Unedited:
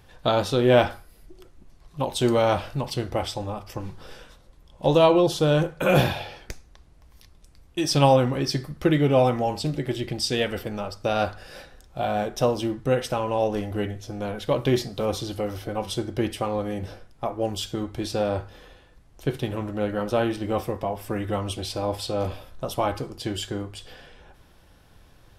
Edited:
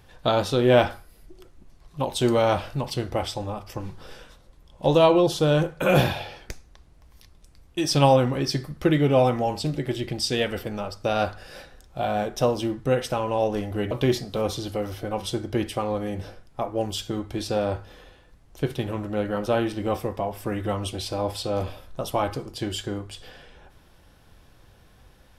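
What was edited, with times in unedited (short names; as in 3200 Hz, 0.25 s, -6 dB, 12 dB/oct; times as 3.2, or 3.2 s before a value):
13.91–14.55 cut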